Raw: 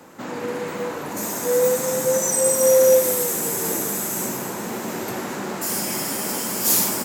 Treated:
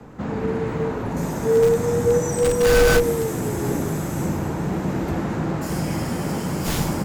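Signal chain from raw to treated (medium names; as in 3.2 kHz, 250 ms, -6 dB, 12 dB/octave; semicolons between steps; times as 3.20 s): integer overflow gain 10 dB; RIAA curve playback; frequency shift -41 Hz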